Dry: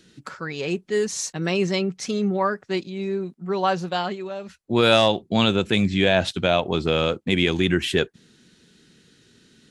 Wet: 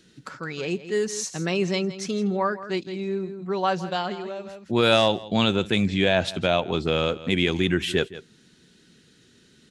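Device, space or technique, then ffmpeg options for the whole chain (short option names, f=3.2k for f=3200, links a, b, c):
ducked delay: -filter_complex "[0:a]asplit=3[a][b][c];[b]adelay=165,volume=-6dB[d];[c]apad=whole_len=435483[e];[d][e]sidechaincompress=threshold=-29dB:ratio=16:attack=5.4:release=334[f];[a][f]amix=inputs=2:normalize=0,volume=-2dB"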